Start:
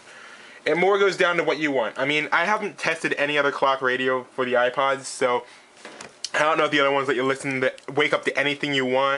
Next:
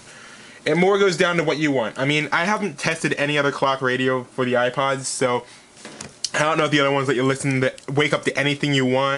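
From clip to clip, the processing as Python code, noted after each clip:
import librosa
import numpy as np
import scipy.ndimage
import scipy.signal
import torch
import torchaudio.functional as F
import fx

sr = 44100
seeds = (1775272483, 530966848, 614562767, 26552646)

y = fx.bass_treble(x, sr, bass_db=14, treble_db=8)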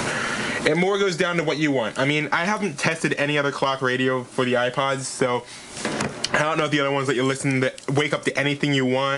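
y = fx.band_squash(x, sr, depth_pct=100)
y = F.gain(torch.from_numpy(y), -2.5).numpy()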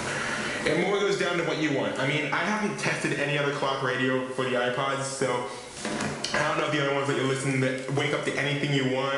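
y = fx.rev_plate(x, sr, seeds[0], rt60_s=1.0, hf_ratio=0.95, predelay_ms=0, drr_db=0.5)
y = F.gain(torch.from_numpy(y), -7.0).numpy()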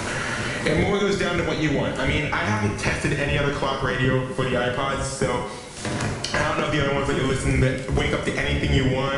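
y = fx.octave_divider(x, sr, octaves=1, level_db=2.0)
y = F.gain(torch.from_numpy(y), 2.5).numpy()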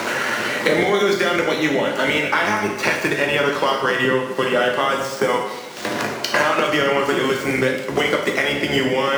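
y = scipy.ndimage.median_filter(x, 5, mode='constant')
y = scipy.signal.sosfilt(scipy.signal.butter(2, 300.0, 'highpass', fs=sr, output='sos'), y)
y = F.gain(torch.from_numpy(y), 6.0).numpy()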